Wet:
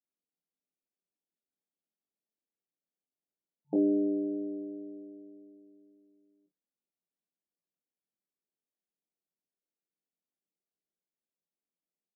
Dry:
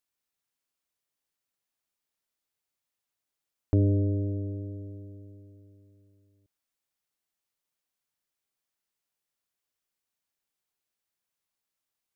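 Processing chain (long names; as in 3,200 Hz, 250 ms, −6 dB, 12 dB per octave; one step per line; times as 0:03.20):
low-pass that shuts in the quiet parts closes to 460 Hz
brick-wall band-pass 150–890 Hz
ambience of single reflections 23 ms −3.5 dB, 50 ms −12.5 dB
level −1.5 dB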